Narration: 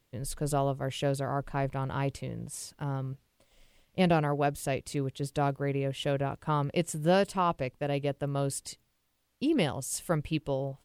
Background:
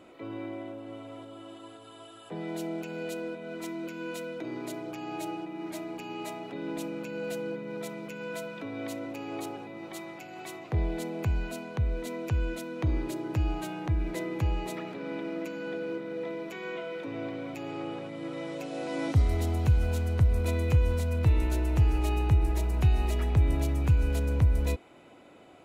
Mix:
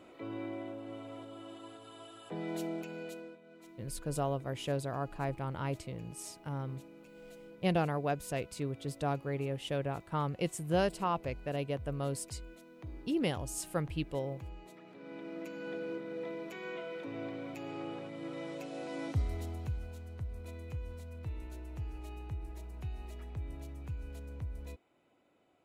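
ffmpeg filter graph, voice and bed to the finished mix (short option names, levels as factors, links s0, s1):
-filter_complex "[0:a]adelay=3650,volume=0.562[s0];[1:a]volume=3.35,afade=t=out:st=2.62:d=0.79:silence=0.16788,afade=t=in:st=14.8:d=0.93:silence=0.223872,afade=t=out:st=18.48:d=1.45:silence=0.237137[s1];[s0][s1]amix=inputs=2:normalize=0"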